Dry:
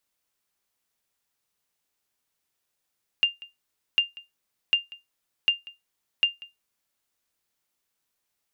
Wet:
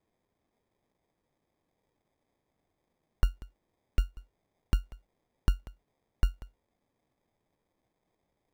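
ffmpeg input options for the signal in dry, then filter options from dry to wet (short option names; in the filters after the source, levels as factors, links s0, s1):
-f lavfi -i "aevalsrc='0.251*(sin(2*PI*2800*mod(t,0.75))*exp(-6.91*mod(t,0.75)/0.18)+0.0841*sin(2*PI*2800*max(mod(t,0.75)-0.19,0))*exp(-6.91*max(mod(t,0.75)-0.19,0)/0.18))':d=3.75:s=44100"
-filter_complex "[0:a]acrossover=split=200|600|1400[s0][s1][s2][s3];[s3]acrusher=samples=31:mix=1:aa=0.000001[s4];[s0][s1][s2][s4]amix=inputs=4:normalize=0"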